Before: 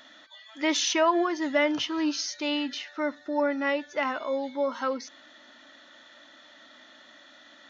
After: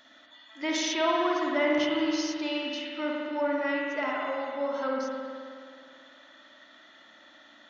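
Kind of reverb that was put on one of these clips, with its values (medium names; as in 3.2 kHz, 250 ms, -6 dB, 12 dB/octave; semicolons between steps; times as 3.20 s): spring tank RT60 2.3 s, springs 53 ms, chirp 75 ms, DRR -2.5 dB; trim -5.5 dB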